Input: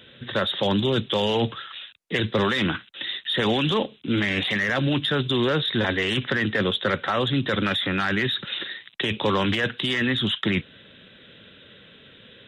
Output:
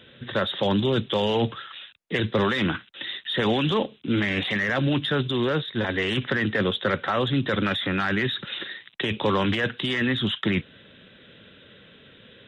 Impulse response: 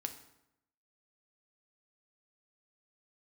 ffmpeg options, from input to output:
-filter_complex "[0:a]asplit=3[a][b][c];[a]afade=t=out:st=5.3:d=0.02[d];[b]agate=range=-33dB:threshold=-19dB:ratio=3:detection=peak,afade=t=in:st=5.3:d=0.02,afade=t=out:st=5.93:d=0.02[e];[c]afade=t=in:st=5.93:d=0.02[f];[d][e][f]amix=inputs=3:normalize=0,highshelf=f=3.9k:g=-7"

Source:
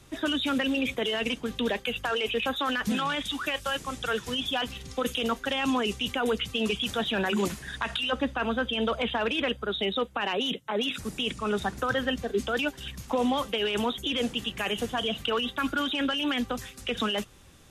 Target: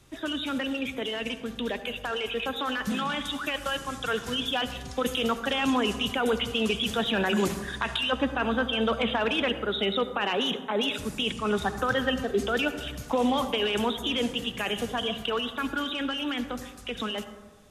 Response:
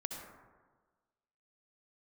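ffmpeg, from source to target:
-filter_complex "[0:a]dynaudnorm=f=620:g=11:m=5dB,asplit=2[a][b];[1:a]atrim=start_sample=2205[c];[b][c]afir=irnorm=-1:irlink=0,volume=-4dB[d];[a][d]amix=inputs=2:normalize=0,volume=-7dB"

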